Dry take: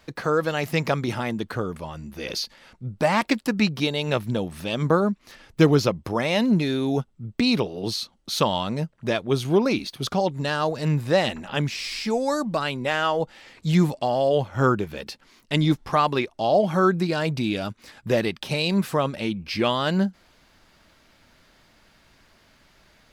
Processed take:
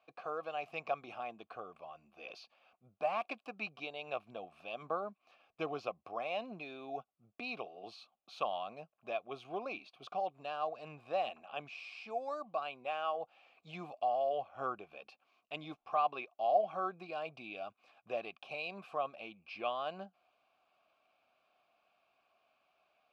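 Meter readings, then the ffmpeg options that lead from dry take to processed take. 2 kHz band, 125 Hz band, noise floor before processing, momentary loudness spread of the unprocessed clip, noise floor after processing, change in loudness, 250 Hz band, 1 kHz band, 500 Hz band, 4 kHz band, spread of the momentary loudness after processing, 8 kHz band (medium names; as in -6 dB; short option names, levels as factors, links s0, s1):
-16.0 dB, -33.0 dB, -59 dBFS, 9 LU, -82 dBFS, -16.0 dB, -28.0 dB, -10.0 dB, -15.0 dB, -21.0 dB, 15 LU, under -30 dB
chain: -filter_complex "[0:a]asplit=3[s0][s1][s2];[s0]bandpass=f=730:t=q:w=8,volume=1[s3];[s1]bandpass=f=1090:t=q:w=8,volume=0.501[s4];[s2]bandpass=f=2440:t=q:w=8,volume=0.355[s5];[s3][s4][s5]amix=inputs=3:normalize=0,equalizer=f=2600:t=o:w=1.4:g=3.5,volume=0.562"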